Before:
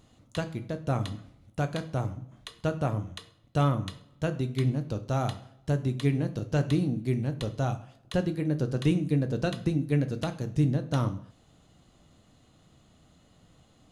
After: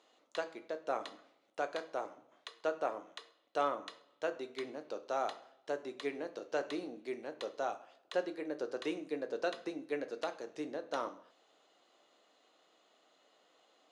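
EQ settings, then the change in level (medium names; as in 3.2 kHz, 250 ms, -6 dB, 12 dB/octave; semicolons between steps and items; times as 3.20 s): high-pass 400 Hz 24 dB/octave; low-pass 5.4 kHz 12 dB/octave; dynamic bell 3.1 kHz, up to -5 dB, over -58 dBFS, Q 1.9; -2.5 dB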